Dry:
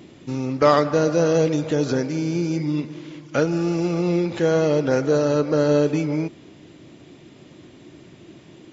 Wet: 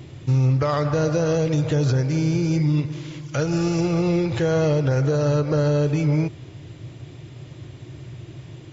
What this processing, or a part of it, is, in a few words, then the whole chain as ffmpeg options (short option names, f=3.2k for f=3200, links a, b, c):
car stereo with a boomy subwoofer: -filter_complex "[0:a]asettb=1/sr,asplit=3[a][b][c];[a]atrim=end=2.924[d];[b]atrim=start=2.92:end=3.81,asetpts=PTS-STARTPTS,afade=t=in:d=0.004:c=qsin,afade=t=out:st=0.886:d=0.004:c=qsin,aemphasis=mode=production:type=cd[e];[c]atrim=start=3.806[f];[d][e]acrossfade=d=0.004:c1=hsin:c2=qsin[g];[g][f]acrossfade=d=0.004:c1=qsin:c2=hsin,lowshelf=f=160:t=q:w=3:g=9,alimiter=limit=-15dB:level=0:latency=1:release=118,volume=2dB"